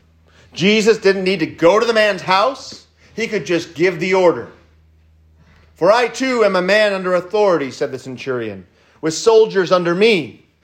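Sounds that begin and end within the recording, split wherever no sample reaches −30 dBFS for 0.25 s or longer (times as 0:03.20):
0:00.55–0:02.77
0:03.18–0:04.48
0:05.81–0:08.61
0:09.03–0:10.30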